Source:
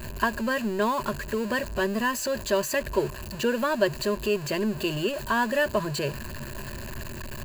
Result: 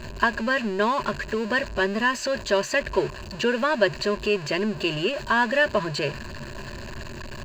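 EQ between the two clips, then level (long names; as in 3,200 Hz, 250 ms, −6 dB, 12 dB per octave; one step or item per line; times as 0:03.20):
dynamic equaliser 2,100 Hz, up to +5 dB, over −40 dBFS, Q 1.1
high-frequency loss of the air 170 metres
bass and treble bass −3 dB, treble +10 dB
+2.5 dB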